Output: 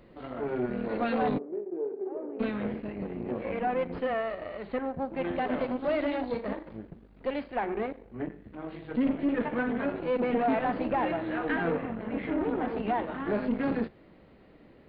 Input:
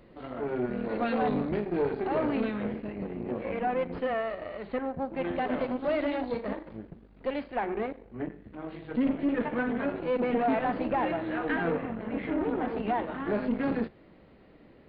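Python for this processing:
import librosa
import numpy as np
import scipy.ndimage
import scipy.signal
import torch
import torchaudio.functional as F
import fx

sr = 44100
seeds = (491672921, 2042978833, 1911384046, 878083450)

y = fx.ladder_bandpass(x, sr, hz=420.0, resonance_pct=65, at=(1.37, 2.39), fade=0.02)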